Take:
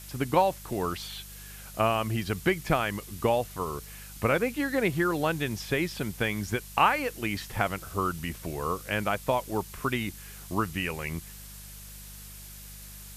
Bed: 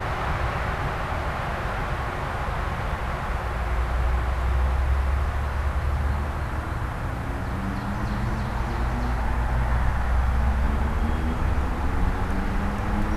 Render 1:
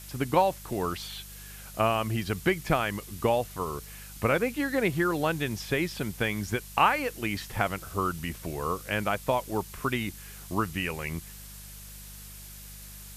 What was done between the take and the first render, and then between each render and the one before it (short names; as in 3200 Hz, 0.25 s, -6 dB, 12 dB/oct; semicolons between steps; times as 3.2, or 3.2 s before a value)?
nothing audible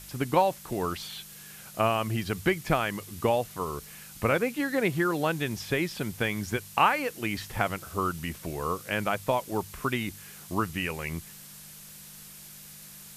de-hum 50 Hz, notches 2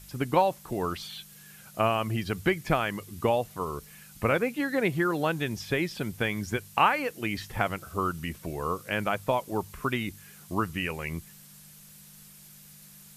denoiser 6 dB, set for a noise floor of -47 dBFS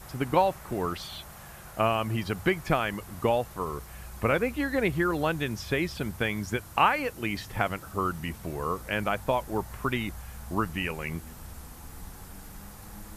add bed -20.5 dB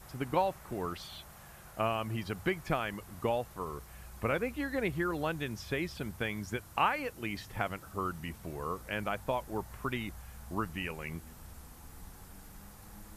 gain -6.5 dB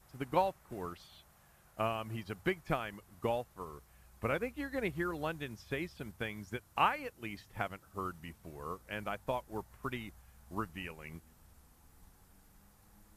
upward expander 1.5:1, over -48 dBFS